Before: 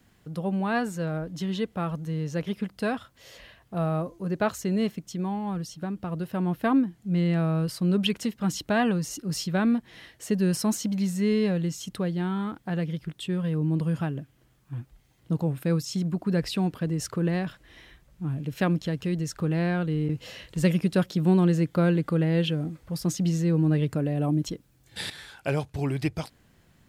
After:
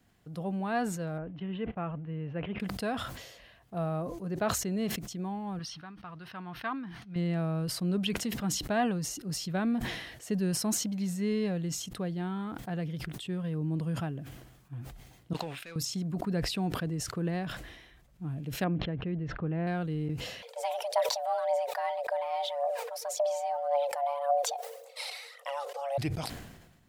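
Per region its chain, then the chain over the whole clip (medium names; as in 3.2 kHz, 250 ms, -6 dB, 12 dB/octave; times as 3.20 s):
1.18–2.60 s: Chebyshev low-pass 2.8 kHz, order 4 + gate -45 dBFS, range -24 dB
5.59–7.16 s: Savitzky-Golay filter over 15 samples + resonant low shelf 800 Hz -10.5 dB, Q 1.5
15.33–15.76 s: band-pass filter 2.9 kHz, Q 1.6 + waveshaping leveller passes 2
18.64–19.67 s: low-pass 2.9 kHz 24 dB/octave + treble shelf 2.1 kHz -7.5 dB
20.42–25.98 s: compression 2:1, threshold -28 dBFS + phaser 1.8 Hz, delay 3.4 ms, feedback 56% + frequency shift +420 Hz
whole clip: peaking EQ 710 Hz +5.5 dB 0.23 oct; decay stretcher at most 51 dB/s; trim -6.5 dB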